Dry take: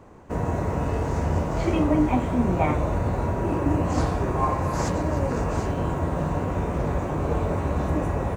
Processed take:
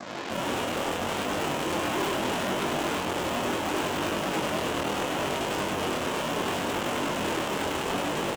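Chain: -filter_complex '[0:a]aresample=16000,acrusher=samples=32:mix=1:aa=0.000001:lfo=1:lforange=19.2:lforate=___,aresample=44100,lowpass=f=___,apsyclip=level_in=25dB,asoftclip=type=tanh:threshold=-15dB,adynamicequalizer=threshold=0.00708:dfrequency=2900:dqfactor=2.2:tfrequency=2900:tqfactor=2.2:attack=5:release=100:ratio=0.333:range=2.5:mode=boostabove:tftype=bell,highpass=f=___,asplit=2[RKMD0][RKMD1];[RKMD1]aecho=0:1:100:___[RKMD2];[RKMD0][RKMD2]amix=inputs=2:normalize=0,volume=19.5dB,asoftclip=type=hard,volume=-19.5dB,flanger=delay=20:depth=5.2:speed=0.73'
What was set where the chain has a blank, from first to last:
3.4, 5700, 440, 0.668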